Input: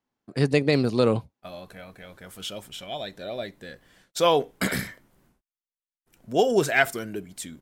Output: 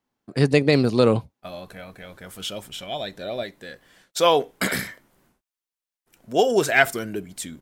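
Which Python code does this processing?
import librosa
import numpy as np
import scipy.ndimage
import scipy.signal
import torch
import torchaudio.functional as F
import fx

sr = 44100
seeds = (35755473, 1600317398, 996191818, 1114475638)

y = fx.low_shelf(x, sr, hz=230.0, db=-7.5, at=(3.43, 6.69))
y = y * 10.0 ** (3.5 / 20.0)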